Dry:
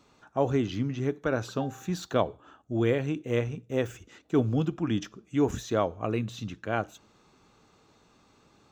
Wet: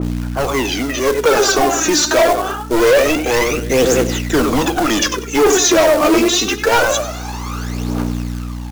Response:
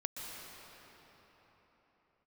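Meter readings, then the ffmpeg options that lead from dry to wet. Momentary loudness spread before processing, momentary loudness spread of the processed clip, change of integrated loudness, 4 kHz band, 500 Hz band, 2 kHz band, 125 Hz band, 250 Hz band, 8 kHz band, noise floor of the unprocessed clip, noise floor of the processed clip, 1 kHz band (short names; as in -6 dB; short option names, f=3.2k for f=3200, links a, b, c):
8 LU, 11 LU, +15.0 dB, +24.5 dB, +16.0 dB, +21.0 dB, +7.0 dB, +12.5 dB, +30.0 dB, -63 dBFS, -26 dBFS, +18.0 dB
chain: -filter_complex "[0:a]highpass=f=260:w=0.5412,highpass=f=260:w=1.3066,dynaudnorm=f=150:g=13:m=16dB,aeval=exprs='val(0)+0.0224*(sin(2*PI*60*n/s)+sin(2*PI*2*60*n/s)/2+sin(2*PI*3*60*n/s)/3+sin(2*PI*4*60*n/s)/4+sin(2*PI*5*60*n/s)/5)':c=same,asplit=2[a][b];[b]adelay=96,lowpass=f=4.8k:p=1,volume=-14dB,asplit=2[c][d];[d]adelay=96,lowpass=f=4.8k:p=1,volume=0.33,asplit=2[e][f];[f]adelay=96,lowpass=f=4.8k:p=1,volume=0.33[g];[c][e][g]amix=inputs=3:normalize=0[h];[a][h]amix=inputs=2:normalize=0,asplit=2[i][j];[j]highpass=f=720:p=1,volume=28dB,asoftclip=type=tanh:threshold=-3.5dB[k];[i][k]amix=inputs=2:normalize=0,lowpass=f=1.2k:p=1,volume=-6dB,aexciter=amount=2.7:drive=6.6:freq=5.1k,aphaser=in_gain=1:out_gain=1:delay=3.4:decay=0.73:speed=0.25:type=triangular,aresample=16000,asoftclip=type=tanh:threshold=-7dB,aresample=44100,acrusher=bits=4:mode=log:mix=0:aa=0.000001,adynamicequalizer=threshold=0.0398:dfrequency=2600:dqfactor=0.7:tfrequency=2600:tqfactor=0.7:attack=5:release=100:ratio=0.375:range=2:mode=boostabove:tftype=highshelf"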